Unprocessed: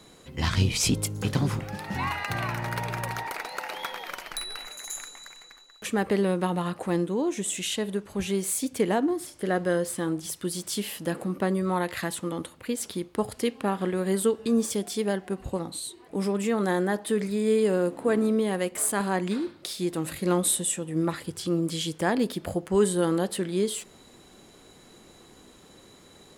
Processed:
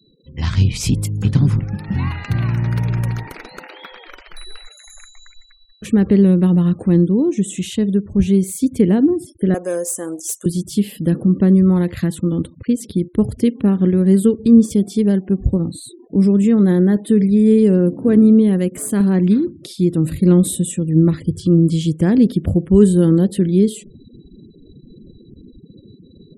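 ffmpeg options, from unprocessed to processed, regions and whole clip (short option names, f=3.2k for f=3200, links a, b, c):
-filter_complex "[0:a]asettb=1/sr,asplit=3[a][b][c];[a]atrim=end=3.674[d];[b]atrim=start=3.67:end=5.16,asetpts=PTS-STARTPTS,afade=t=in:d=0.004:c=qsin,afade=t=out:st=1.486:d=0.004:c=qsin,acrossover=split=3300[e][f];[f]acompressor=threshold=-39dB:ratio=4:attack=1:release=60[g];[e][g]amix=inputs=2:normalize=0,lowshelf=f=360:g=-7.5,bandreject=f=60:t=h:w=6,bandreject=f=120:t=h:w=6,bandreject=f=180:t=h:w=6,bandreject=f=240:t=h:w=6,bandreject=f=300:t=h:w=6,bandreject=f=360:t=h:w=6,bandreject=f=420:t=h:w=6[h];[c]atrim=start=5.156[i];[d][h]acrossfade=d=0.004:c1=hsin:c2=qsin[j];[j][i]acrossfade=d=0.004:c1=qsin:c2=hsin,asettb=1/sr,asplit=3[k][l][m];[k]atrim=end=9.544[n];[l]atrim=start=9.54:end=10.46,asetpts=PTS-STARTPTS,afade=t=in:d=0.004:c=qsin,afade=t=out:st=0.916:d=0.004:c=qsin,highshelf=f=5.2k:t=q:w=3:g=9,asoftclip=type=hard:threshold=-18dB,highpass=f=630:t=q:w=2[o];[m]atrim=start=10.456[p];[n][o]acrossfade=d=0.004:c1=hsin:c2=qsin[q];[q][p]acrossfade=d=0.004:c1=qsin:c2=hsin,afftfilt=real='re*gte(hypot(re,im),0.00794)':imag='im*gte(hypot(re,im),0.00794)':win_size=1024:overlap=0.75,asubboost=boost=12:cutoff=240"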